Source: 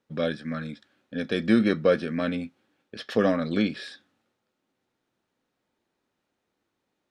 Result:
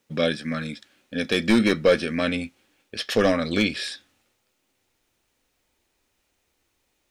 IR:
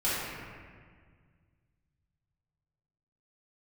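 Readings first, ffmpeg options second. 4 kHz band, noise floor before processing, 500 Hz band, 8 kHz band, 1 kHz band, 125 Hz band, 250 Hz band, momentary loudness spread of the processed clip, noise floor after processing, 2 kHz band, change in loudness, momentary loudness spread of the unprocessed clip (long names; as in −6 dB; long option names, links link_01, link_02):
+9.0 dB, −80 dBFS, +3.0 dB, can't be measured, +3.5 dB, +1.5 dB, +1.5 dB, 16 LU, −73 dBFS, +6.5 dB, +2.5 dB, 18 LU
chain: -af "aexciter=amount=2.3:drive=4.6:freq=2100,asoftclip=type=hard:threshold=-13.5dB,asubboost=boost=9.5:cutoff=56,volume=4dB"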